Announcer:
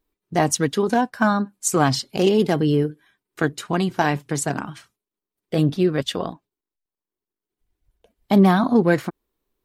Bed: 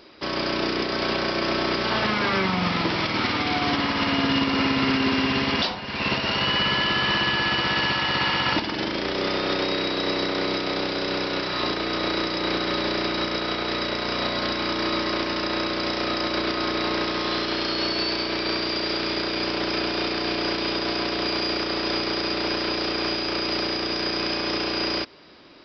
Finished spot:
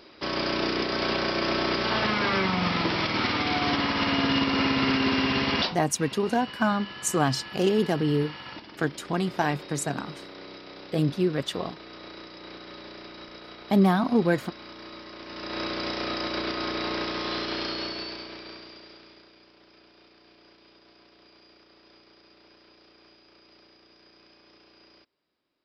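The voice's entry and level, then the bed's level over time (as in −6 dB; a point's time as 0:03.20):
5.40 s, −5.5 dB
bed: 0:05.65 −2 dB
0:05.85 −18 dB
0:15.16 −18 dB
0:15.63 −5 dB
0:17.65 −5 dB
0:19.47 −31 dB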